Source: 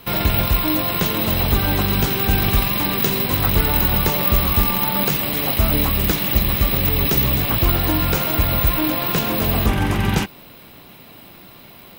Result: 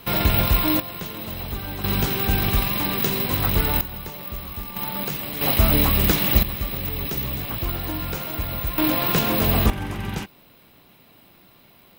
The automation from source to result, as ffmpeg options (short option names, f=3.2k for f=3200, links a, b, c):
-af "asetnsamples=n=441:p=0,asendcmd='0.8 volume volume -12.5dB;1.84 volume volume -3.5dB;3.81 volume volume -16dB;4.76 volume volume -8.5dB;5.41 volume volume 0dB;6.43 volume volume -9.5dB;8.78 volume volume -0.5dB;9.7 volume volume -10dB',volume=-1dB"